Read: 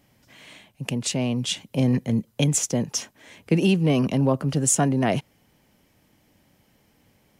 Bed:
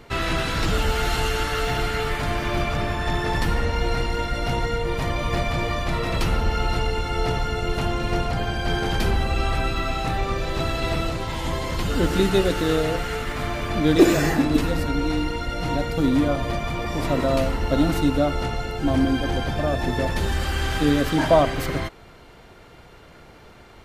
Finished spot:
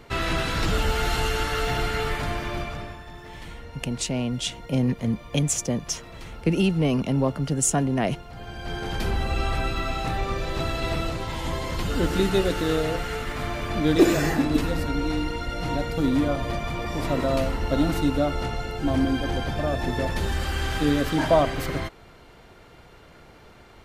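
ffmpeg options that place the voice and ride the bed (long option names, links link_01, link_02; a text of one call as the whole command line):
ffmpeg -i stem1.wav -i stem2.wav -filter_complex "[0:a]adelay=2950,volume=-2dB[link_01];[1:a]volume=14dB,afade=type=out:start_time=2.08:duration=0.98:silence=0.149624,afade=type=in:start_time=8.28:duration=1.05:silence=0.16788[link_02];[link_01][link_02]amix=inputs=2:normalize=0" out.wav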